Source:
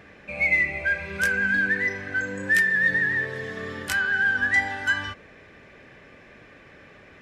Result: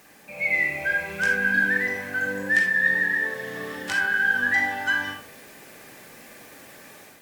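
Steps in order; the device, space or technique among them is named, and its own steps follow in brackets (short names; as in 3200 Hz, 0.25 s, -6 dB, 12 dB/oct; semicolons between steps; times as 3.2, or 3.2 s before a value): filmed off a television (BPF 150–7300 Hz; bell 850 Hz +6 dB 0.34 oct; reverb RT60 0.35 s, pre-delay 36 ms, DRR 2 dB; white noise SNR 25 dB; AGC gain up to 6.5 dB; gain -7 dB; AAC 96 kbps 48000 Hz)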